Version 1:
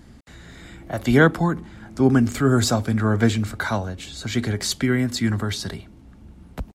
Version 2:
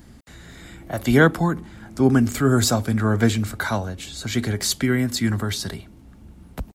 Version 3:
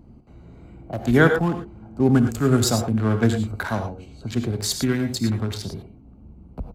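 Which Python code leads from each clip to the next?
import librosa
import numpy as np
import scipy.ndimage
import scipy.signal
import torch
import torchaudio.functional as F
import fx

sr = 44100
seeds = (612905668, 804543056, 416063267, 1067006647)

y1 = fx.high_shelf(x, sr, hz=11000.0, db=12.0)
y2 = fx.wiener(y1, sr, points=25)
y2 = fx.rev_gated(y2, sr, seeds[0], gate_ms=130, shape='rising', drr_db=6.0)
y2 = F.gain(torch.from_numpy(y2), -1.0).numpy()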